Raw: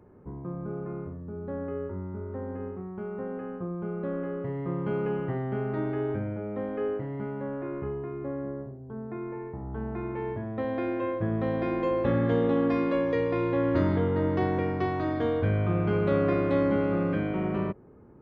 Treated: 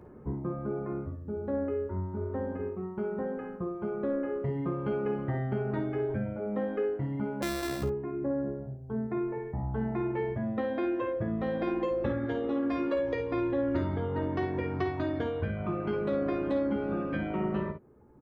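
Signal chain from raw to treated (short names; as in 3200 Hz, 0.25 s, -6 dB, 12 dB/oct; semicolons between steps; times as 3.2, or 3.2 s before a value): 7.42–7.83 sample sorter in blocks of 128 samples; reverb removal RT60 1.3 s; compressor 6:1, threshold -33 dBFS, peak gain reduction 10.5 dB; on a send: early reflections 14 ms -6.5 dB, 54 ms -10 dB, 67 ms -11.5 dB; on the sum: gain +4.5 dB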